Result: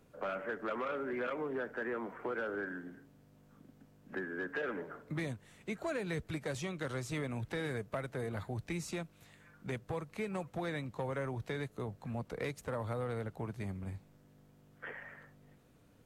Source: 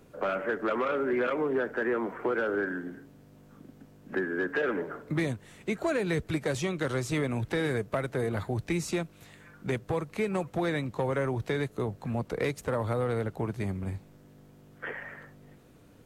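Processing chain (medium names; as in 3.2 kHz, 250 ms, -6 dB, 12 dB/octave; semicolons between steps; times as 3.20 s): peaking EQ 360 Hz -3.5 dB 0.66 oct; trim -7.5 dB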